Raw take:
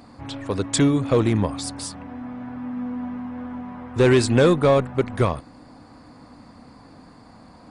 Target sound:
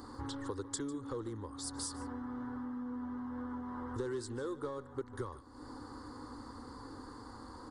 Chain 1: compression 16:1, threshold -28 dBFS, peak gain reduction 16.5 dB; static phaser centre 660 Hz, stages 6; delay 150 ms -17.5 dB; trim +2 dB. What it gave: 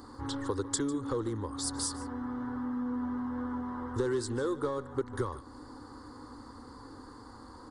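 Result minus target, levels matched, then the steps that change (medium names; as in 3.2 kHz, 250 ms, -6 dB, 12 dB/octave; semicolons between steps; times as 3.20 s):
compression: peak gain reduction -7.5 dB
change: compression 16:1, threshold -36 dBFS, peak gain reduction 24 dB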